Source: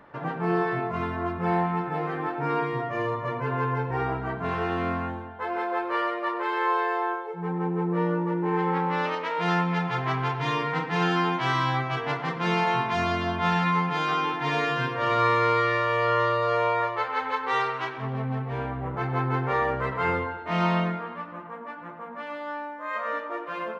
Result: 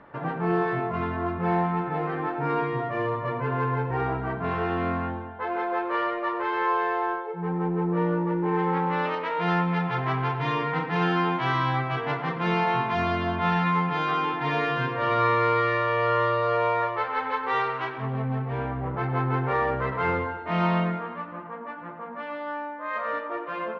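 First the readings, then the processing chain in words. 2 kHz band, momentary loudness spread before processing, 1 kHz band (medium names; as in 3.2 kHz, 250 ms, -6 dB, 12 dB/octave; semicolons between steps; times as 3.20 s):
-0.5 dB, 9 LU, +0.5 dB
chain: in parallel at -11 dB: overload inside the chain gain 29.5 dB; on the sum: distance through air 180 m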